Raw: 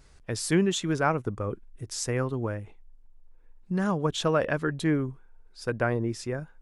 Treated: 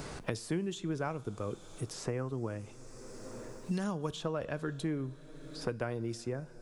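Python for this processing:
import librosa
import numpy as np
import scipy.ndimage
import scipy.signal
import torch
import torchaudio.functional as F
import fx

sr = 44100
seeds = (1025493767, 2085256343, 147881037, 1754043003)

y = fx.peak_eq(x, sr, hz=1800.0, db=-5.5, octaves=0.99)
y = fx.rev_double_slope(y, sr, seeds[0], early_s=0.36, late_s=3.9, knee_db=-18, drr_db=15.0)
y = fx.band_squash(y, sr, depth_pct=100)
y = y * librosa.db_to_amplitude(-8.5)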